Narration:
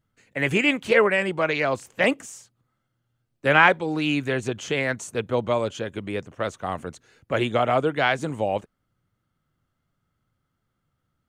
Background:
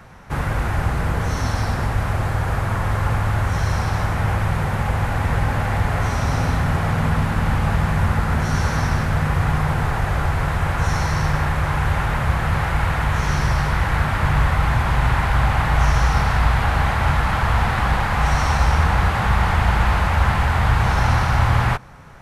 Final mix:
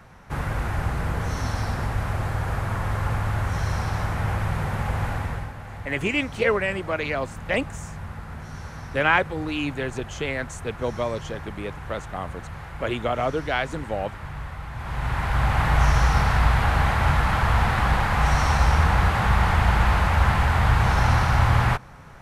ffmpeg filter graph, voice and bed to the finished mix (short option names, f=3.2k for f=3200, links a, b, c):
-filter_complex "[0:a]adelay=5500,volume=-3.5dB[a];[1:a]volume=10dB,afade=t=out:st=5.08:d=0.45:silence=0.251189,afade=t=in:st=14.73:d=0.94:silence=0.177828[b];[a][b]amix=inputs=2:normalize=0"